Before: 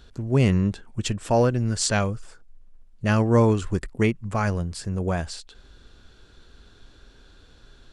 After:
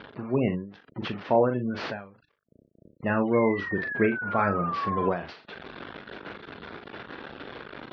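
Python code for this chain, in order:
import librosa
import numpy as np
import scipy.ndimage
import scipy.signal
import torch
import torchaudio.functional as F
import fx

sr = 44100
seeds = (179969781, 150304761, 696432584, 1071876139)

y = fx.delta_mod(x, sr, bps=32000, step_db=-30.5)
y = fx.spec_gate(y, sr, threshold_db=-30, keep='strong')
y = fx.env_lowpass(y, sr, base_hz=2300.0, full_db=-14.5)
y = fx.spec_paint(y, sr, seeds[0], shape='fall', start_s=3.33, length_s=1.77, low_hz=990.0, high_hz=2200.0, level_db=-34.0)
y = fx.rider(y, sr, range_db=4, speed_s=0.5)
y = fx.bandpass_edges(y, sr, low_hz=210.0, high_hz=3000.0)
y = fx.doubler(y, sr, ms=40.0, db=-8)
y = fx.end_taper(y, sr, db_per_s=110.0)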